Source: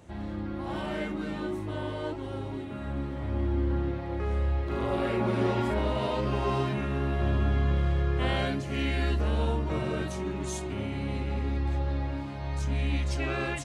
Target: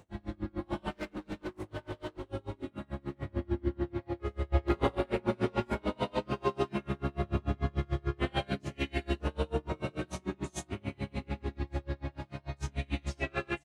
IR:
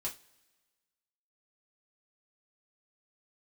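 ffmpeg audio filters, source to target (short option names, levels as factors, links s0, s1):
-filter_complex "[0:a]aecho=1:1:20|55:0.562|0.531,asettb=1/sr,asplit=3[s0][s1][s2];[s0]atrim=end=0.914[s3];[s1]atrim=start=0.91:end=2.3,asetpts=PTS-STARTPTS,afade=t=in:d=0.004:c=qsin,afade=t=out:st=1.386:d=0.004:c=qsin,asoftclip=type=hard:threshold=0.0251[s4];[s2]atrim=start=2.296[s5];[s3][s4]acrossfade=d=0.004:c1=hsin:c2=qsin[s6];[s6][s5]acrossfade=d=0.004:c1=qsin:c2=hsin,asettb=1/sr,asplit=3[s7][s8][s9];[s7]atrim=end=4.524[s10];[s8]atrim=start=4.52:end=4.95,asetpts=PTS-STARTPTS,afade=t=in:d=0.004:c=qsin,afade=t=out:st=0.426:d=0.004:c=qsin,acontrast=79[s11];[s9]atrim=start=4.946[s12];[s10][s11]acrossfade=d=0.004:c1=hsin:c2=qsin[s13];[s13][s12]acrossfade=d=0.004:c1=qsin:c2=hsin,aeval=exprs='val(0)*pow(10,-33*(0.5-0.5*cos(2*PI*6.8*n/s))/20)':c=same"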